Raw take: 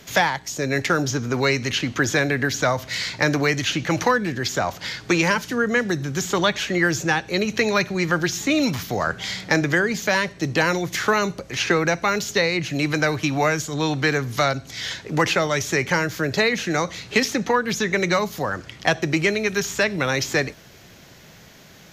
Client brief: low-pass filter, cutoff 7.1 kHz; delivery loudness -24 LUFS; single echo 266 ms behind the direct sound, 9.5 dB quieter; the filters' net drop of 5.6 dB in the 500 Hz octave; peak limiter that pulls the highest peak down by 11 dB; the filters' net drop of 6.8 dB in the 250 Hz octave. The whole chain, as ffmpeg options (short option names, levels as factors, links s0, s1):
-af "lowpass=7100,equalizer=f=250:t=o:g=-8.5,equalizer=f=500:t=o:g=-4.5,alimiter=limit=0.15:level=0:latency=1,aecho=1:1:266:0.335,volume=1.33"